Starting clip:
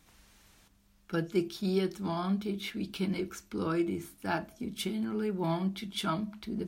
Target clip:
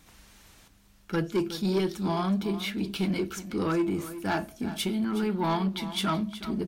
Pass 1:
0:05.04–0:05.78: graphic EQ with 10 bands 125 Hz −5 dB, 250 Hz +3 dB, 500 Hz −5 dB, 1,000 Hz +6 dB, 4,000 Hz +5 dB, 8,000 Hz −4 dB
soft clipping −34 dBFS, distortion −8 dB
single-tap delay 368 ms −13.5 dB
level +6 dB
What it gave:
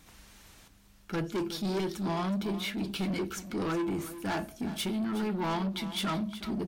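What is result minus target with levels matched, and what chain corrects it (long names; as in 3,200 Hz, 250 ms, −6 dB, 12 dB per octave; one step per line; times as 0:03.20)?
soft clipping: distortion +7 dB
0:05.04–0:05.78: graphic EQ with 10 bands 125 Hz −5 dB, 250 Hz +3 dB, 500 Hz −5 dB, 1,000 Hz +6 dB, 4,000 Hz +5 dB, 8,000 Hz −4 dB
soft clipping −26 dBFS, distortion −15 dB
single-tap delay 368 ms −13.5 dB
level +6 dB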